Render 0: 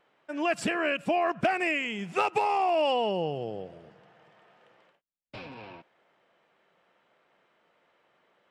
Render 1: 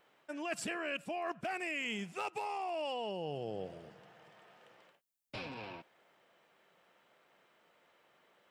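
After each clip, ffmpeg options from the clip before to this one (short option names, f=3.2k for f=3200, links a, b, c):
-af "areverse,acompressor=threshold=-34dB:ratio=12,areverse,highshelf=f=5.7k:g=11.5,volume=-1.5dB"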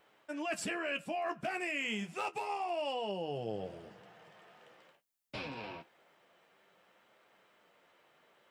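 -af "flanger=delay=9.3:depth=4.8:regen=-40:speed=0.28:shape=sinusoidal,volume=5.5dB"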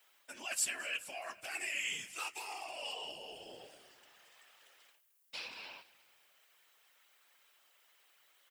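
-filter_complex "[0:a]aderivative,afftfilt=real='hypot(re,im)*cos(2*PI*random(0))':imag='hypot(re,im)*sin(2*PI*random(1))':win_size=512:overlap=0.75,asplit=4[a][b][c][d];[b]adelay=217,afreqshift=-53,volume=-21dB[e];[c]adelay=434,afreqshift=-106,volume=-27.4dB[f];[d]adelay=651,afreqshift=-159,volume=-33.8dB[g];[a][e][f][g]amix=inputs=4:normalize=0,volume=15dB"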